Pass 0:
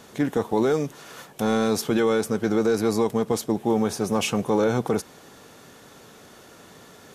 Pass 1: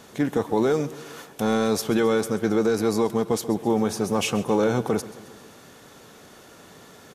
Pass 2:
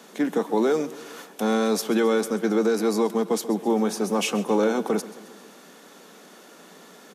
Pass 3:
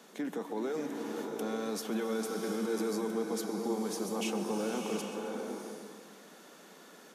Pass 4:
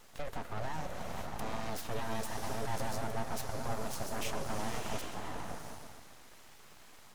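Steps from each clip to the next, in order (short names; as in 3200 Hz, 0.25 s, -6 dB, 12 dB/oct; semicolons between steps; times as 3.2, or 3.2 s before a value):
feedback echo 0.133 s, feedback 57%, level -17 dB
steep high-pass 170 Hz 72 dB/oct
limiter -20 dBFS, peak gain reduction 8.5 dB; bloom reverb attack 0.72 s, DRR 2 dB; gain -8 dB
full-wave rectifier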